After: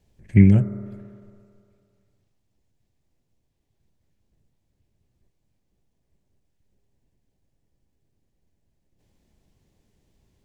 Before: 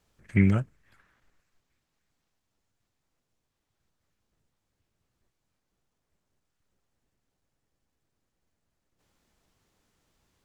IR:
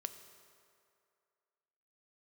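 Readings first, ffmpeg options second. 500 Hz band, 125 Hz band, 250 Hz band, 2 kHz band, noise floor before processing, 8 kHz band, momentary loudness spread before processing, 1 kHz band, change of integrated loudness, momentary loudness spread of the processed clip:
+5.5 dB, +9.0 dB, +8.0 dB, −1.0 dB, −81 dBFS, can't be measured, 12 LU, −4.0 dB, +7.5 dB, 17 LU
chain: -filter_complex "[0:a]asplit=2[link_01][link_02];[link_02]lowpass=frequency=1400:width=0.5412,lowpass=frequency=1400:width=1.3066[link_03];[1:a]atrim=start_sample=2205,lowshelf=frequency=310:gain=9.5[link_04];[link_03][link_04]afir=irnorm=-1:irlink=0,volume=2dB[link_05];[link_01][link_05]amix=inputs=2:normalize=0,volume=-1dB"

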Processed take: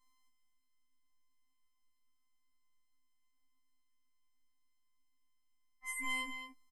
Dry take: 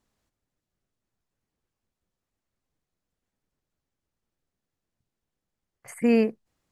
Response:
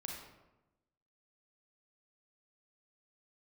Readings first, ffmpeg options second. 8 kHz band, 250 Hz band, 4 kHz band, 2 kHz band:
+1.0 dB, −28.5 dB, +1.5 dB, 0.0 dB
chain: -af "afftfilt=real='hypot(re,im)*cos(PI*b)':imag='0':win_size=512:overlap=0.75,highshelf=frequency=3600:gain=-2.5,aecho=1:1:220:0.376,afftfilt=real='re*3.46*eq(mod(b,12),0)':imag='im*3.46*eq(mod(b,12),0)':win_size=2048:overlap=0.75,volume=2.5dB"

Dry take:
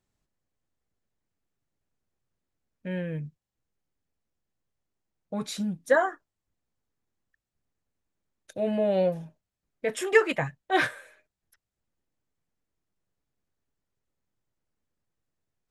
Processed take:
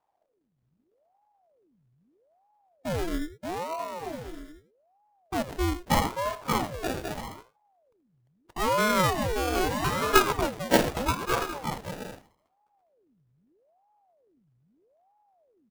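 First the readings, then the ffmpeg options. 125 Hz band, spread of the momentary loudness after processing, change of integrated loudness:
+5.0 dB, 16 LU, −0.5 dB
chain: -filter_complex "[0:a]lowshelf=frequency=500:gain=10.5,asplit=2[link_01][link_02];[link_02]aecho=0:1:79:0.2[link_03];[link_01][link_03]amix=inputs=2:normalize=0,acrusher=samples=33:mix=1:aa=0.000001:lfo=1:lforange=19.8:lforate=0.2,asplit=2[link_04][link_05];[link_05]aecho=0:1:580|928|1137|1262|1337:0.631|0.398|0.251|0.158|0.1[link_06];[link_04][link_06]amix=inputs=2:normalize=0,aeval=exprs='val(0)*sin(2*PI*480*n/s+480*0.75/0.79*sin(2*PI*0.79*n/s))':channel_layout=same,volume=-2.5dB"

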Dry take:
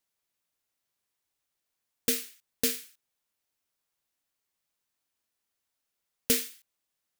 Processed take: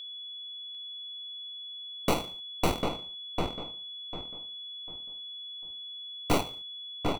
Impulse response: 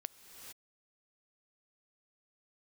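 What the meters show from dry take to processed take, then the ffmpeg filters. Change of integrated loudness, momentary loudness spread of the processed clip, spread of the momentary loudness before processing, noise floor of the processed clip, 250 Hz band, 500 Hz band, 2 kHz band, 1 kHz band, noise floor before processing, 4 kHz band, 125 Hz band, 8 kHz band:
−6.0 dB, 9 LU, 14 LU, −42 dBFS, +5.5 dB, +6.5 dB, +2.0 dB, +23.5 dB, −84 dBFS, +7.5 dB, +15.5 dB, −9.5 dB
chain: -filter_complex "[0:a]aeval=exprs='0.335*(cos(1*acos(clip(val(0)/0.335,-1,1)))-cos(1*PI/2))+0.015*(cos(7*acos(clip(val(0)/0.335,-1,1)))-cos(7*PI/2))+0.106*(cos(8*acos(clip(val(0)/0.335,-1,1)))-cos(8*PI/2))':channel_layout=same,equalizer=frequency=2100:width_type=o:width=2.7:gain=9.5,acrusher=samples=26:mix=1:aa=0.000001,asoftclip=type=tanh:threshold=-17.5dB,aeval=exprs='val(0)+0.0112*sin(2*PI*3400*n/s)':channel_layout=same,asplit=2[link_01][link_02];[link_02]adelay=748,lowpass=frequency=2200:poles=1,volume=-3.5dB,asplit=2[link_03][link_04];[link_04]adelay=748,lowpass=frequency=2200:poles=1,volume=0.3,asplit=2[link_05][link_06];[link_06]adelay=748,lowpass=frequency=2200:poles=1,volume=0.3,asplit=2[link_07][link_08];[link_08]adelay=748,lowpass=frequency=2200:poles=1,volume=0.3[link_09];[link_01][link_03][link_05][link_07][link_09]amix=inputs=5:normalize=0"

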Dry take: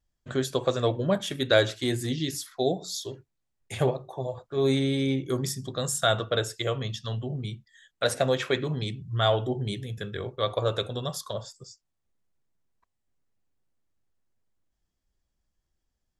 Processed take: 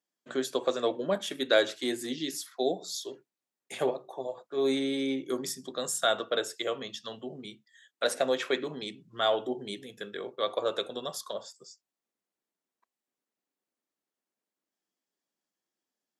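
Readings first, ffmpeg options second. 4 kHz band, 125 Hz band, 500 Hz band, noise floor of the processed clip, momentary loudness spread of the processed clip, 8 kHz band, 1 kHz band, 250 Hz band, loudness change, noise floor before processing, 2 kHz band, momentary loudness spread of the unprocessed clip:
−2.5 dB, −21.0 dB, −2.5 dB, below −85 dBFS, 13 LU, −2.5 dB, −2.5 dB, −4.0 dB, −3.5 dB, −80 dBFS, −2.5 dB, 11 LU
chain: -af "highpass=frequency=230:width=0.5412,highpass=frequency=230:width=1.3066,volume=-2.5dB"

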